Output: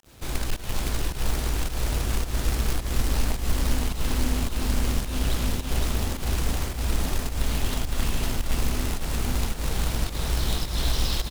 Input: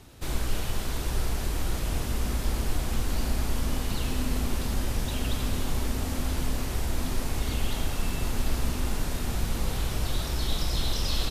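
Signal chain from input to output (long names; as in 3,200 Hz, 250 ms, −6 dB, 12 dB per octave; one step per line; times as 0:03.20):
fake sidechain pumping 107 BPM, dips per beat 1, −22 dB, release 180 ms
log-companded quantiser 4 bits
on a send: repeating echo 513 ms, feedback 34%, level −3 dB
on the sum: highs frequency-modulated by the lows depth 0.3 ms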